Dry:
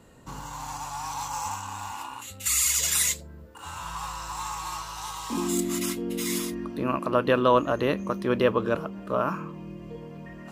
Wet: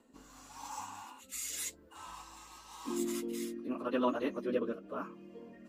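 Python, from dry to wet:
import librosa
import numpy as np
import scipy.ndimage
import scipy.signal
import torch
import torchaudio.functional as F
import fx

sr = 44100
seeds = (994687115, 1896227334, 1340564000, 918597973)

y = fx.stretch_vocoder_free(x, sr, factor=0.54)
y = fx.rotary(y, sr, hz=0.9)
y = fx.low_shelf_res(y, sr, hz=190.0, db=-8.0, q=3.0)
y = y * librosa.db_to_amplitude(-7.0)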